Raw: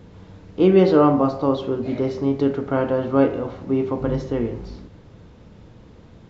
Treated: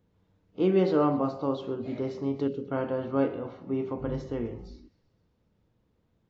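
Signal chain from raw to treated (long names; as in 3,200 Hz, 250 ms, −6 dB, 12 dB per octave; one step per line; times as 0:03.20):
noise reduction from a noise print of the clip's start 16 dB
gain on a spectral selection 0:02.48–0:02.71, 570–2,500 Hz −17 dB
delay with a high-pass on its return 128 ms, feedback 62%, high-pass 2,200 Hz, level −19 dB
level −9 dB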